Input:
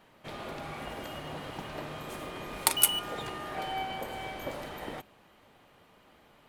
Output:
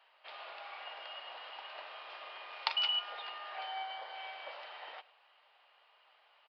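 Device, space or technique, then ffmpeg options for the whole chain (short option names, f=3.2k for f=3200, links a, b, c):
musical greeting card: -filter_complex "[0:a]asettb=1/sr,asplit=3[a][b][c];[a]atrim=end=3.664[d];[b]atrim=start=3.66:end=4.14,asetpts=PTS-STARTPTS,afade=t=in:d=0.004:c=qsin,afade=t=out:st=0.476:d=0.004:c=qsin,bandreject=f=2.6k:w=5.1[e];[c]atrim=start=4.136[f];[d][e]acrossfade=d=0.004:c1=hsin:c2=qsin[g];[g][f]acrossfade=d=0.004:c1=qsin:c2=hsin,aecho=1:1:107:0.0944,aresample=11025,aresample=44100,highpass=f=670:w=0.5412,highpass=f=670:w=1.3066,equalizer=f=2.8k:t=o:w=0.24:g=7,volume=-5dB"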